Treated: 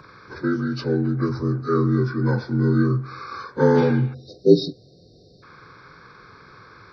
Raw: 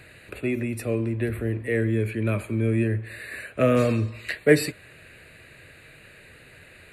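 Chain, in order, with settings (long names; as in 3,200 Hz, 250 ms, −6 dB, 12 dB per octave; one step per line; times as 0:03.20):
partials spread apart or drawn together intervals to 79%
time-frequency box erased 0:04.14–0:05.43, 770–3,600 Hz
level +4.5 dB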